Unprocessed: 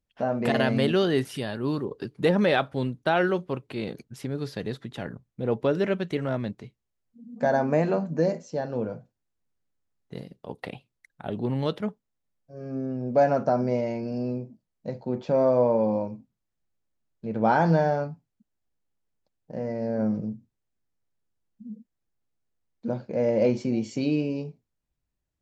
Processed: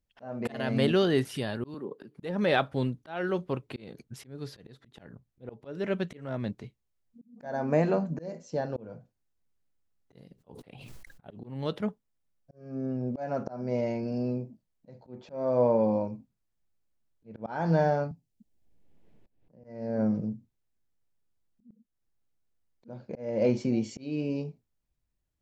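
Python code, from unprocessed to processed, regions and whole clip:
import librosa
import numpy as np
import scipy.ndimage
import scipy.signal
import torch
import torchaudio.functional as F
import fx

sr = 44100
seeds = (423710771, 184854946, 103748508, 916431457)

y = fx.chain(x, sr, fx.highpass(hz=170.0, slope=24),
    fx.peak_eq(hz=5300.0, db=-8.0, octaves=1.3),
    fx.auto_swell(attack_ms=119.0), at=(1.74, 2.17))
y = fx.chain(y, sr, fx.notch(hz=3600.0, q=26.0),
    fx.sustainer(db_per_s=39.0), at=(10.33, 11.54))
y = fx.chain(y, sr, fx.peak_eq(hz=1300.0, db=-15.0, octaves=1.3),
    fx.band_squash(depth_pct=100), at=(18.11, 19.64))
y = fx.low_shelf(y, sr, hz=68.0, db=5.0)
y = fx.auto_swell(y, sr, attack_ms=355.0)
y = y * librosa.db_to_amplitude(-1.5)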